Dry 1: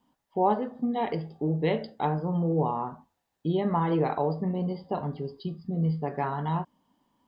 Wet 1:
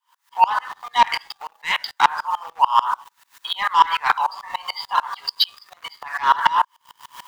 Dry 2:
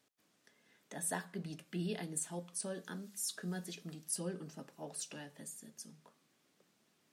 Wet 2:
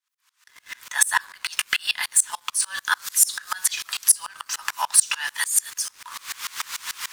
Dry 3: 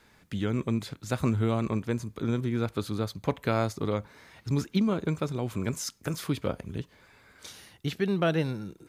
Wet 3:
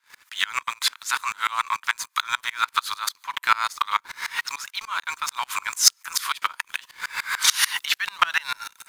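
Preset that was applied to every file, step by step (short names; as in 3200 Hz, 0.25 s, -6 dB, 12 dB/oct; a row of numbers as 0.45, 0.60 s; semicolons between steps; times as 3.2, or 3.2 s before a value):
recorder AGC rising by 24 dB/s; Chebyshev high-pass 960 Hz, order 5; in parallel at -0.5 dB: compressor, threshold -42 dBFS; on the sum: sample leveller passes 2; dB-ramp tremolo swelling 6.8 Hz, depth 27 dB; normalise peaks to -3 dBFS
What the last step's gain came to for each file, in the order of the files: +18.5, +10.0, +12.0 dB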